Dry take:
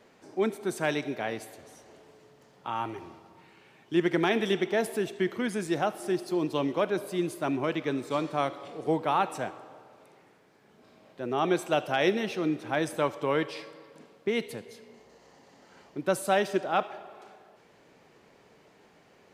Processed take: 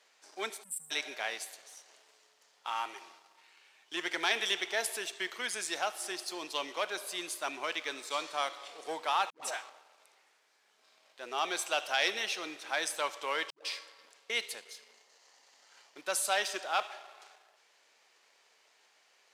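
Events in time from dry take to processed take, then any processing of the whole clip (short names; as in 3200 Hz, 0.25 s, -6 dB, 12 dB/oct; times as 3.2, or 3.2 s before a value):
0.63–0.91 spectral delete 250–7500 Hz
9.3–9.7 dispersion highs, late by 0.128 s, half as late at 420 Hz
13.5–14.3 dispersion highs, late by 0.149 s, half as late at 400 Hz
whole clip: sample leveller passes 1; HPF 730 Hz 12 dB/oct; bell 6100 Hz +12 dB 2.8 oct; gain -7.5 dB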